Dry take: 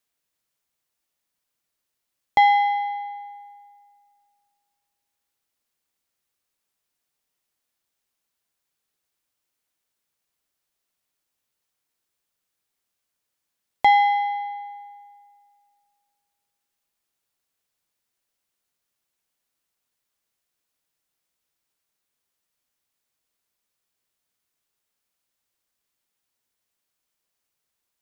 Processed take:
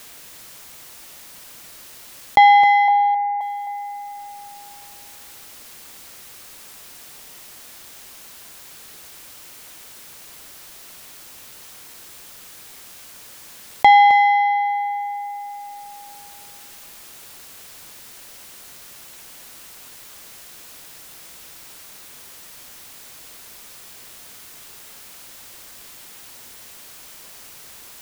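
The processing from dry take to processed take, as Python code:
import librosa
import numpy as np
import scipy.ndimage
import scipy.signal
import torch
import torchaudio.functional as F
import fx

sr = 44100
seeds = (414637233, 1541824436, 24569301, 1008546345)

y = fx.lowpass(x, sr, hz=1600.0, slope=24, at=(2.88, 3.41))
y = y + 10.0 ** (-13.5 / 20.0) * np.pad(y, (int(263 * sr / 1000.0), 0))[:len(y)]
y = fx.env_flatten(y, sr, amount_pct=50)
y = y * librosa.db_to_amplitude(4.5)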